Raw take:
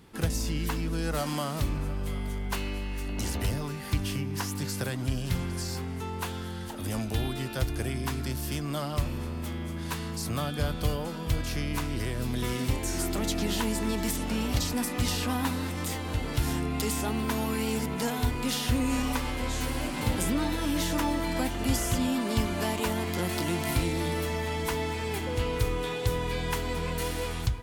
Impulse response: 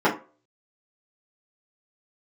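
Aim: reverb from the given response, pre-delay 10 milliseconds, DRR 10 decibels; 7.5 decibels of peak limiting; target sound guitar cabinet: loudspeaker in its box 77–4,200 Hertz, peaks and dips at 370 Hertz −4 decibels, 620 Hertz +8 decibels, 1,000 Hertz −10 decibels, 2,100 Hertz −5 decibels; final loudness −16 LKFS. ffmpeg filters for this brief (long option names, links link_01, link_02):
-filter_complex "[0:a]alimiter=limit=-21dB:level=0:latency=1,asplit=2[link_01][link_02];[1:a]atrim=start_sample=2205,adelay=10[link_03];[link_02][link_03]afir=irnorm=-1:irlink=0,volume=-29dB[link_04];[link_01][link_04]amix=inputs=2:normalize=0,highpass=77,equalizer=frequency=370:width_type=q:width=4:gain=-4,equalizer=frequency=620:width_type=q:width=4:gain=8,equalizer=frequency=1000:width_type=q:width=4:gain=-10,equalizer=frequency=2100:width_type=q:width=4:gain=-5,lowpass=frequency=4200:width=0.5412,lowpass=frequency=4200:width=1.3066,volume=17dB"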